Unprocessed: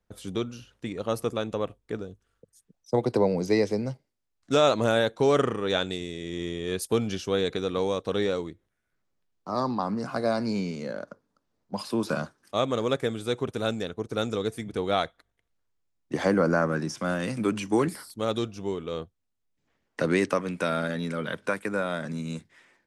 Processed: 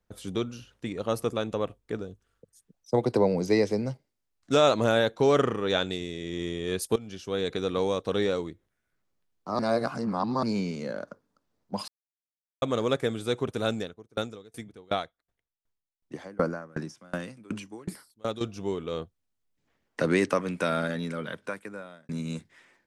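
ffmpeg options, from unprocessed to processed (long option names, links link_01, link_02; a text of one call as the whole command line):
ffmpeg -i in.wav -filter_complex "[0:a]asettb=1/sr,asplit=3[link_01][link_02][link_03];[link_01]atrim=end=4.834[link_04];[link_02]atrim=start=4.83:end=6.39,asetpts=PTS-STARTPTS,afade=type=in:duration=0.004:curve=qsin,afade=type=out:start_time=1.556:duration=0.004:curve=qsin,equalizer=frequency=8700:width=3.9:gain=-6[link_05];[link_03]atrim=start=6.386[link_06];[link_04][link_05]acrossfade=duration=0.004:curve1=hsin:curve2=qsin[link_07];[link_07][link_06]acrossfade=duration=0.004:curve1=qsin:curve2=hsin,asettb=1/sr,asplit=3[link_08][link_09][link_10];[link_08]atrim=end=13.804[link_11];[link_09]atrim=start=13.8:end=18.41,asetpts=PTS-STARTPTS,afade=type=in:duration=0.004:curve=qsin,afade=type=out:start_time=4.606:duration=0.004:curve=qsin,aeval=exprs='val(0)*pow(10,-29*if(lt(mod(2.7*n/s,1),2*abs(2.7)/1000),1-mod(2.7*n/s,1)/(2*abs(2.7)/1000),(mod(2.7*n/s,1)-2*abs(2.7)/1000)/(1-2*abs(2.7)/1000))/20)':channel_layout=same[link_12];[link_10]atrim=start=18.406[link_13];[link_11][link_12]acrossfade=duration=0.004:curve1=hsin:curve2=qsin[link_14];[link_14][link_13]acrossfade=duration=0.004:curve1=qsin:curve2=hsin,asplit=7[link_15][link_16][link_17][link_18][link_19][link_20][link_21];[link_15]atrim=end=6.96,asetpts=PTS-STARTPTS,afade=type=out:start_time=6.956:duration=0.004:curve=hsin:silence=0.125893[link_22];[link_16]atrim=start=6.96:end=9.592,asetpts=PTS-STARTPTS,afade=type=in:duration=0.69:silence=0.125893[link_23];[link_17]atrim=start=9.588:end=10.432,asetpts=PTS-STARTPTS,areverse[link_24];[link_18]atrim=start=10.428:end=11.88,asetpts=PTS-STARTPTS,afade=type=out:start_time=1.448:duration=0.004:curve=hsin[link_25];[link_19]atrim=start=11.88:end=12.62,asetpts=PTS-STARTPTS,volume=0[link_26];[link_20]atrim=start=12.62:end=22.09,asetpts=PTS-STARTPTS,afade=type=in:duration=0.004:curve=hsin,afade=type=out:start_time=8.2:duration=1.27[link_27];[link_21]atrim=start=22.09,asetpts=PTS-STARTPTS,afade=type=in:duration=0.004:curve=hsin[link_28];[link_22][link_23]concat=n=2:v=0:a=1[link_29];[link_29][link_24]acrossfade=duration=0.004:curve1=hsin:curve2=hsin[link_30];[link_25][link_26][link_27][link_28]concat=n=4:v=0:a=1[link_31];[link_30][link_31]acrossfade=duration=0.004:curve1=hsin:curve2=hsin" out.wav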